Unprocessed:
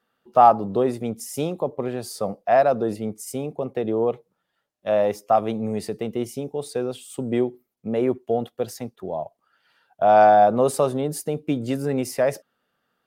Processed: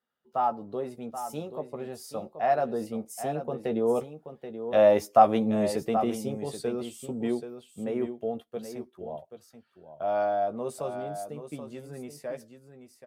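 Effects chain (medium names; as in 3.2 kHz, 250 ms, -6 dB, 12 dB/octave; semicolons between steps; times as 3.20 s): Doppler pass-by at 5.07 s, 11 m/s, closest 11 m; doubling 13 ms -7 dB; on a send: delay 780 ms -10 dB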